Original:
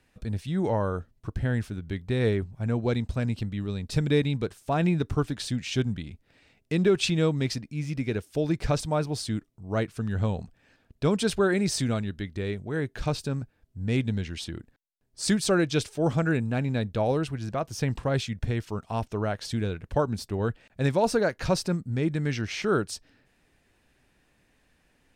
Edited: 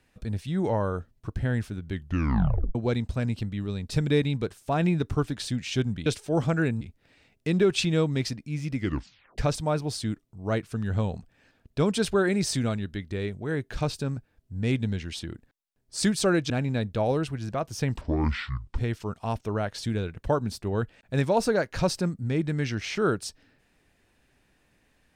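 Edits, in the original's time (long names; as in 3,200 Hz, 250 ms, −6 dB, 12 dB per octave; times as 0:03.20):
0:01.92: tape stop 0.83 s
0:08.01: tape stop 0.62 s
0:15.75–0:16.50: move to 0:06.06
0:18.01–0:18.45: play speed 57%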